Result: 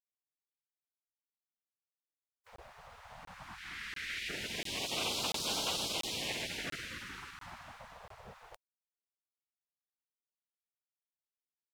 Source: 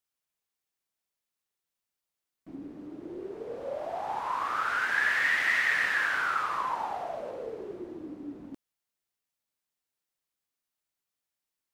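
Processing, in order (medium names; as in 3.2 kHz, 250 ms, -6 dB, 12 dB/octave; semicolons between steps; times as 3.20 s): spectral gate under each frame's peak -25 dB weak; 3.58–4.29 s: graphic EQ 125/250/500/1000/2000/4000 Hz -10/-6/-5/-12/+9/+3 dB; crackling interface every 0.69 s, samples 1024, zero, from 0.49 s; trim +8.5 dB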